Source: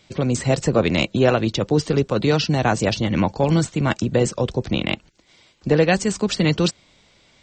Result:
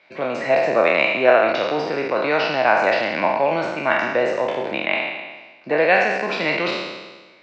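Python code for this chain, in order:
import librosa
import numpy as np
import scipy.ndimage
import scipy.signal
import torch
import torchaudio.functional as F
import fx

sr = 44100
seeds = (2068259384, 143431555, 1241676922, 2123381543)

y = fx.spec_trails(x, sr, decay_s=1.32)
y = fx.cabinet(y, sr, low_hz=410.0, low_slope=12, high_hz=3800.0, hz=(440.0, 640.0, 960.0, 1600.0, 2300.0, 3300.0), db=(-3, 7, 4, 5, 8, -9))
y = y * librosa.db_to_amplitude(-2.0)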